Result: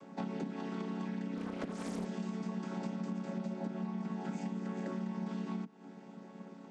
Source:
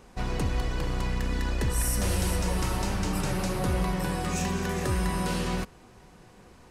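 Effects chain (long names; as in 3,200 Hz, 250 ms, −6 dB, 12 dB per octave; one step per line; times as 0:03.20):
channel vocoder with a chord as carrier minor triad, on F#3
downward compressor 12 to 1, threshold −41 dBFS, peak gain reduction 18 dB
0:01.37–0:02.06: highs frequency-modulated by the lows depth 0.61 ms
level +6 dB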